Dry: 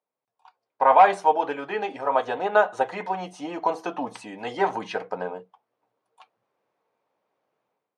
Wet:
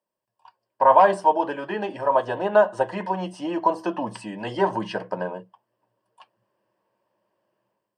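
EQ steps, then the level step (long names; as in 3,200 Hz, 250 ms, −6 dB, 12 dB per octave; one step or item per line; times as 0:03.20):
EQ curve with evenly spaced ripples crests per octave 1.3, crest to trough 10 dB
dynamic equaliser 2,300 Hz, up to −7 dB, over −36 dBFS, Q 1.2
low-shelf EQ 270 Hz +8 dB
0.0 dB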